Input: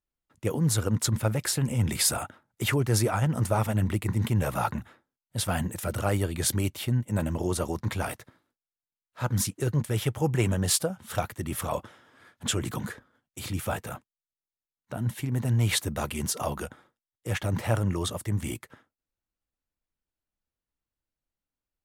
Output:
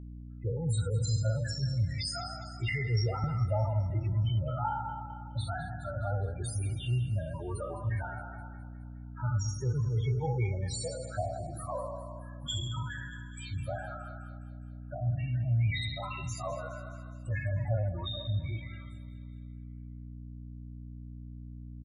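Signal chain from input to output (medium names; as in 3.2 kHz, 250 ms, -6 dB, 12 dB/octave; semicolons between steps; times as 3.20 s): spectral sustain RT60 1.26 s; frequency weighting A; spectral noise reduction 16 dB; resonant low shelf 160 Hz +12 dB, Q 3; in parallel at +1 dB: compression, threshold -37 dBFS, peak gain reduction 17.5 dB; on the sum: loudest bins only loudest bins 8; hum 60 Hz, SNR 10 dB; on a send: feedback delay 208 ms, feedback 59%, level -16 dB; 2.69–3.24 s: on the sum: three bands expanded up and down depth 70%; trim -6 dB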